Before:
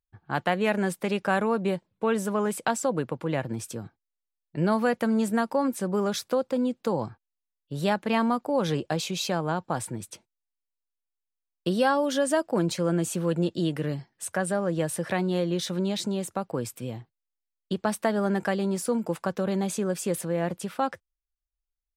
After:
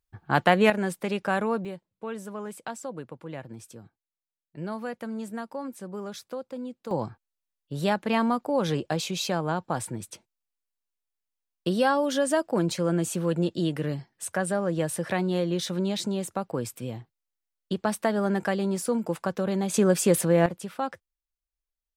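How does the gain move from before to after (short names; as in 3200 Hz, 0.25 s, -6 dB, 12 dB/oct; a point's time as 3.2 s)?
+5.5 dB
from 0.7 s -1.5 dB
from 1.65 s -10 dB
from 6.91 s 0 dB
from 19.74 s +7 dB
from 20.46 s -3 dB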